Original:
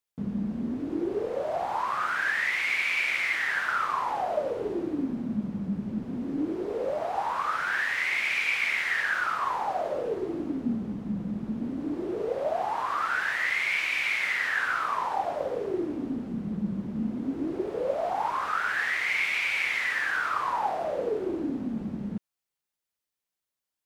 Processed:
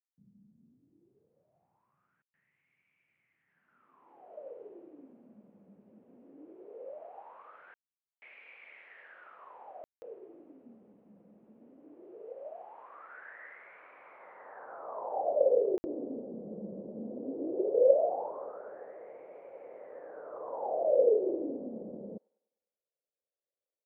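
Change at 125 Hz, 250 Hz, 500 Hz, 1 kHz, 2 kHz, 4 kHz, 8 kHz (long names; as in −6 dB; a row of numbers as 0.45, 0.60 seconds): below −15 dB, −13.0 dB, 0.0 dB, −14.5 dB, −29.5 dB, below −35 dB, below −30 dB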